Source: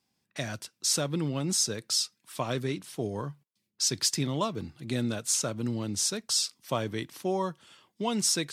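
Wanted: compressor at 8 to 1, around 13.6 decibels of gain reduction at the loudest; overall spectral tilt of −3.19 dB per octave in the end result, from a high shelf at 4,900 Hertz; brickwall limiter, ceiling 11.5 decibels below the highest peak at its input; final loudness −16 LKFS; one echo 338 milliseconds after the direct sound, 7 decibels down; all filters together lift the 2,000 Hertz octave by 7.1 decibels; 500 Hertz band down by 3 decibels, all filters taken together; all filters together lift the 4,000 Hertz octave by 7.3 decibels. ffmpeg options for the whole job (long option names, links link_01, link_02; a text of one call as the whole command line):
ffmpeg -i in.wav -af "equalizer=frequency=500:width_type=o:gain=-4.5,equalizer=frequency=2000:width_type=o:gain=7,equalizer=frequency=4000:width_type=o:gain=3.5,highshelf=frequency=4900:gain=8,acompressor=threshold=-30dB:ratio=8,alimiter=level_in=2.5dB:limit=-24dB:level=0:latency=1,volume=-2.5dB,aecho=1:1:338:0.447,volume=20.5dB" out.wav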